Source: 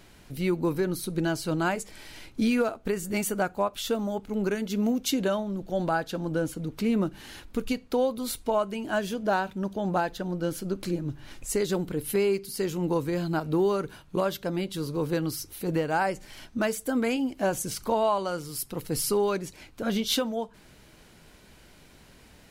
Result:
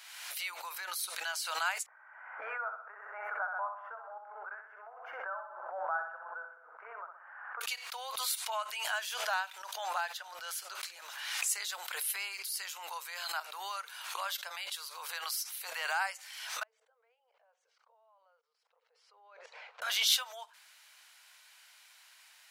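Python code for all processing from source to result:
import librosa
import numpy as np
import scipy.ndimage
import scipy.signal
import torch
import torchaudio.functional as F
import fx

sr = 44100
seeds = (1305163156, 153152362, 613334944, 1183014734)

y = fx.chain(x, sr, fx.ellip_lowpass(hz=1500.0, order=4, stop_db=60),
    fx.echo_feedback(ms=63, feedback_pct=50, wet_db=-6), at=(1.86, 7.61))
y = fx.chain(y, sr, fx.level_steps(step_db=19),
    fx.double_bandpass(hz=300.0, octaves=1.3),
    fx.air_absorb(metres=120.0), at=(16.63, 19.82))
y = scipy.signal.sosfilt(scipy.signal.bessel(8, 1400.0, 'highpass', norm='mag', fs=sr, output='sos'), y)
y = fx.pre_swell(y, sr, db_per_s=40.0)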